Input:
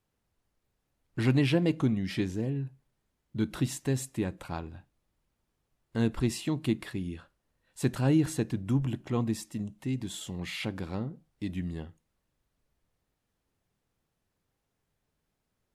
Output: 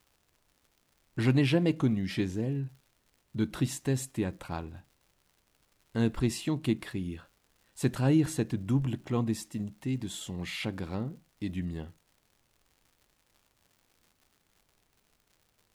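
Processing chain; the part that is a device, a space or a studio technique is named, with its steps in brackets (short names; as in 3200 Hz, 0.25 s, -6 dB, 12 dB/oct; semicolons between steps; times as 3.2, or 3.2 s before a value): vinyl LP (crackle 140/s -51 dBFS; pink noise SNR 42 dB)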